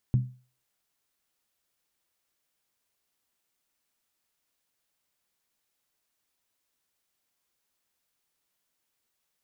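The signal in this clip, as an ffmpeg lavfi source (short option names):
-f lavfi -i "aevalsrc='0.15*pow(10,-3*t/0.37)*sin(2*PI*126*t)+0.0422*pow(10,-3*t/0.293)*sin(2*PI*200.8*t)+0.0119*pow(10,-3*t/0.253)*sin(2*PI*269.1*t)+0.00335*pow(10,-3*t/0.244)*sin(2*PI*289.3*t)+0.000944*pow(10,-3*t/0.227)*sin(2*PI*334.3*t)':d=0.63:s=44100"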